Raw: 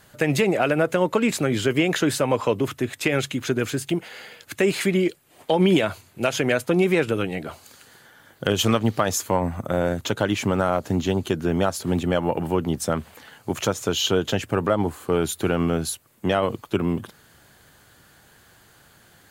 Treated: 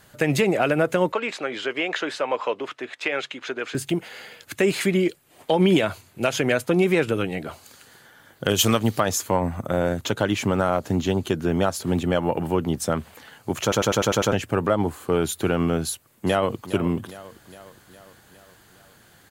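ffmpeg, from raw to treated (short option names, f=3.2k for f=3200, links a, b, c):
-filter_complex "[0:a]asettb=1/sr,asplit=3[a][b][c];[a]atrim=end=1.124[d];[b]atrim=start=1.12:end=3.75,asetpts=PTS-STARTPTS,afade=t=in:d=0.004:c=qsin,afade=t=out:st=2.626:d=0.004:c=qsin,highpass=530,lowpass=3.8k[e];[c]atrim=start=3.746[f];[d][e]acrossfade=d=0.004:c1=hsin:c2=qsin[g];[g][f]acrossfade=d=0.004:c1=qsin:c2=hsin,asettb=1/sr,asplit=3[h][i][j];[h]atrim=end=8.484[k];[i]atrim=start=8.48:end=9,asetpts=PTS-STARTPTS,afade=t=in:d=0.004:c=qsin,afade=t=out:st=0.516:d=0.004:c=qsin,aemphasis=mode=production:type=cd[l];[j]atrim=start=8.996[m];[k][l]acrossfade=d=0.004:c1=hsin:c2=qsin[n];[n][m]acrossfade=d=0.004:c1=qsin:c2=hsin,asplit=2[o][p];[p]afade=t=in:st=15.85:d=0.01,afade=t=out:st=16.67:d=0.01,aecho=0:1:410|820|1230|1640|2050|2460:0.177828|0.106697|0.0640181|0.0384108|0.0230465|0.0138279[q];[o][q]amix=inputs=2:normalize=0,asplit=8[r][s][t][u][v][w][x][y];[r]atrim=end=13.722[z];[s]atrim=start=13.618:end=13.722[aa];[t]atrim=start=13.618:end=13.722[ab];[u]atrim=start=13.618:end=13.722[ac];[v]atrim=start=13.618:end=13.722[ad];[w]atrim=start=13.618:end=13.722[ae];[x]atrim=start=13.618:end=13.722[af];[y]atrim=start=14.318[ag];[z][aa]acrossfade=d=0.004:c1=hsin:c2=hsin[ah];[ah][ab]acrossfade=d=0.004:c1=hsin:c2=hsin[ai];[ai][ac]acrossfade=d=0.004:c1=hsin:c2=hsin[aj];[aj][ad]acrossfade=d=0.004:c1=hsin:c2=hsin[ak];[ak][ae]acrossfade=d=0.004:c1=hsin:c2=hsin[al];[al][af]acrossfade=d=0.004:c1=hsin:c2=hsin[am];[am][ag]acrossfade=d=0.004:c1=hsin:c2=hsin"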